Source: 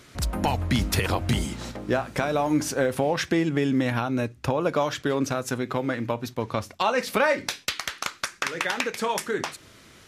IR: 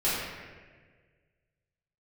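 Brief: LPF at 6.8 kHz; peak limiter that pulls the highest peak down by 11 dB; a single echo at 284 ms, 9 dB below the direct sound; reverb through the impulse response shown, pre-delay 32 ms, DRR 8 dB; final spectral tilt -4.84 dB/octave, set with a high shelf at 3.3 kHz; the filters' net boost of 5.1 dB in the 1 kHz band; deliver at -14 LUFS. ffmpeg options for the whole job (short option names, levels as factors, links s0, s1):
-filter_complex "[0:a]lowpass=6800,equalizer=f=1000:t=o:g=7,highshelf=f=3300:g=-6.5,alimiter=limit=0.133:level=0:latency=1,aecho=1:1:284:0.355,asplit=2[s0][s1];[1:a]atrim=start_sample=2205,adelay=32[s2];[s1][s2]afir=irnorm=-1:irlink=0,volume=0.1[s3];[s0][s3]amix=inputs=2:normalize=0,volume=5.01"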